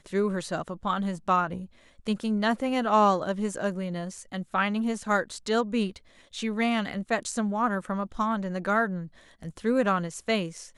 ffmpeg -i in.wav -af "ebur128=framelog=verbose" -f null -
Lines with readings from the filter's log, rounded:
Integrated loudness:
  I:         -27.8 LUFS
  Threshold: -38.1 LUFS
Loudness range:
  LRA:         2.3 LU
  Threshold: -48.0 LUFS
  LRA low:   -29.1 LUFS
  LRA high:  -26.8 LUFS